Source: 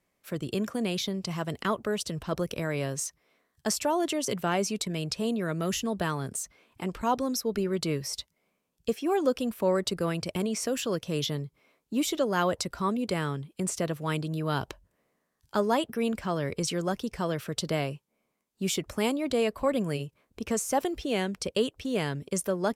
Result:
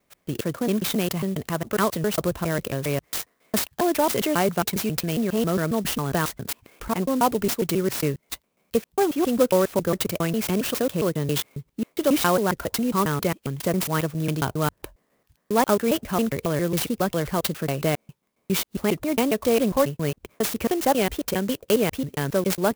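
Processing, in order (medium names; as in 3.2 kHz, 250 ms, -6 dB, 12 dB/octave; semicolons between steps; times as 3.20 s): slices played last to first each 136 ms, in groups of 2; sampling jitter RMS 0.048 ms; trim +6 dB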